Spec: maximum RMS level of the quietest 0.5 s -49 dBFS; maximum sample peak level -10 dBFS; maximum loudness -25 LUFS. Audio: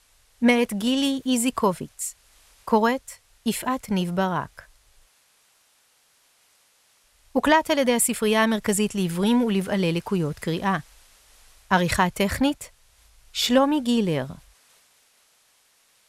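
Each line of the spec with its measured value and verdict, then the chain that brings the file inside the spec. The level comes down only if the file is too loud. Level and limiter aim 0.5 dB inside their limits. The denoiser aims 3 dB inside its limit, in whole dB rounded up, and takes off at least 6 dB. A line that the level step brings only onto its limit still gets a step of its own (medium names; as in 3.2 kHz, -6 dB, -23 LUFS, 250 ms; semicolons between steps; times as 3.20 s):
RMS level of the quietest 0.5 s -63 dBFS: pass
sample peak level -5.5 dBFS: fail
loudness -23.0 LUFS: fail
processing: trim -2.5 dB; peak limiter -10.5 dBFS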